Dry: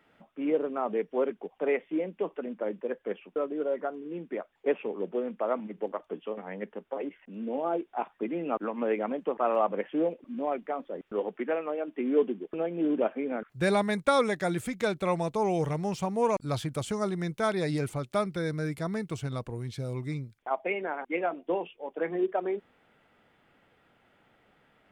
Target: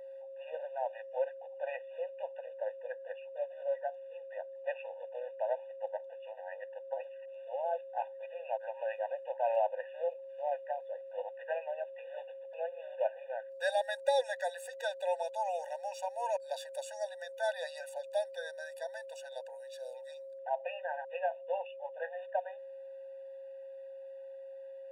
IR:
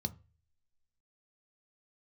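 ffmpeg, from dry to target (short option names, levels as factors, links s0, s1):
-af "aeval=exprs='val(0)+0.00891*sin(2*PI*540*n/s)':c=same,afftfilt=real='re*eq(mod(floor(b*sr/1024/490),2),1)':imag='im*eq(mod(floor(b*sr/1024/490),2),1)':win_size=1024:overlap=0.75,volume=0.708"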